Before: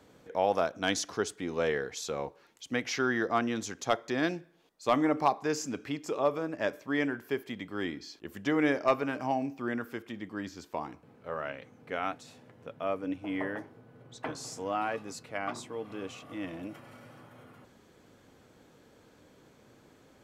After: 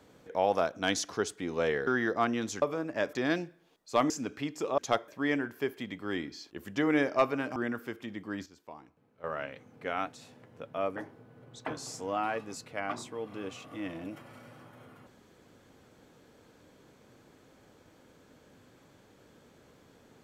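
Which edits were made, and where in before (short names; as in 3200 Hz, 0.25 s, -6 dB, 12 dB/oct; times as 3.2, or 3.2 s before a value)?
1.87–3.01 cut
3.76–4.06 swap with 6.26–6.77
5.03–5.58 cut
9.25–9.62 cut
10.52–11.3 gain -11.5 dB
13.02–13.54 cut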